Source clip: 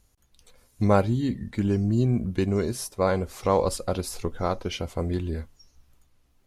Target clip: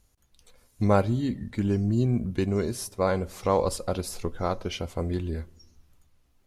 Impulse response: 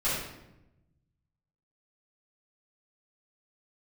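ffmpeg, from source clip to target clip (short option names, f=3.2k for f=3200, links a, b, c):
-filter_complex "[0:a]asplit=2[a][b];[1:a]atrim=start_sample=2205[c];[b][c]afir=irnorm=-1:irlink=0,volume=-33.5dB[d];[a][d]amix=inputs=2:normalize=0,volume=-1.5dB"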